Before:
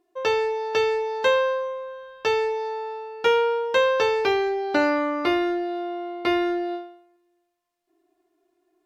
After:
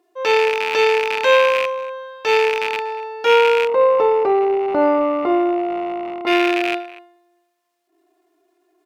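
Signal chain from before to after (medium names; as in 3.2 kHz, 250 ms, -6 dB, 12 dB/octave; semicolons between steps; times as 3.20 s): rattle on loud lows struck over -44 dBFS, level -17 dBFS; high-pass 300 Hz 12 dB/octave; speakerphone echo 240 ms, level -17 dB; transient shaper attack -7 dB, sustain 0 dB; 3.67–6.27 s: Savitzky-Golay filter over 65 samples; trim +8 dB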